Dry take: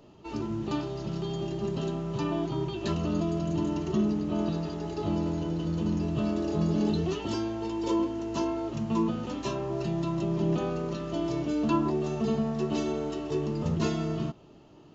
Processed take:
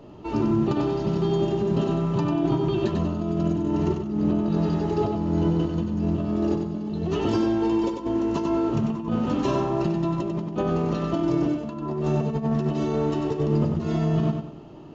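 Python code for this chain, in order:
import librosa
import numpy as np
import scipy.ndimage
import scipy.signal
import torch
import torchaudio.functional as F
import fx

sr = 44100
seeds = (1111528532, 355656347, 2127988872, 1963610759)

y = fx.high_shelf(x, sr, hz=2600.0, db=-10.5)
y = fx.over_compress(y, sr, threshold_db=-31.0, ratio=-0.5)
y = fx.echo_feedback(y, sr, ms=95, feedback_pct=34, wet_db=-5.5)
y = y * librosa.db_to_amplitude(7.0)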